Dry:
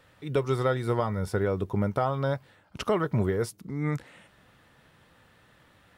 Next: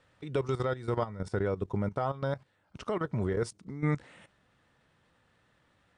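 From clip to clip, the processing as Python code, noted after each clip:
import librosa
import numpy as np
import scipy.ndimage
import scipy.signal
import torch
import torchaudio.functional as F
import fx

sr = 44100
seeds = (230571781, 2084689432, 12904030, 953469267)

y = fx.level_steps(x, sr, step_db=14)
y = scipy.signal.sosfilt(scipy.signal.cheby1(5, 1.0, 9200.0, 'lowpass', fs=sr, output='sos'), y)
y = fx.rider(y, sr, range_db=10, speed_s=0.5)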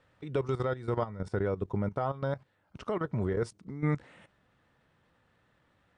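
y = fx.high_shelf(x, sr, hz=3600.0, db=-7.0)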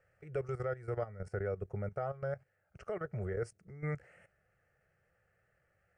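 y = fx.fixed_phaser(x, sr, hz=990.0, stages=6)
y = y * 10.0 ** (-3.5 / 20.0)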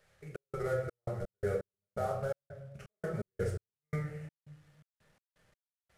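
y = fx.cvsd(x, sr, bps=64000)
y = fx.room_shoebox(y, sr, seeds[0], volume_m3=280.0, walls='mixed', distance_m=1.3)
y = fx.step_gate(y, sr, bpm=84, pattern='xx.xx.x.x..', floor_db=-60.0, edge_ms=4.5)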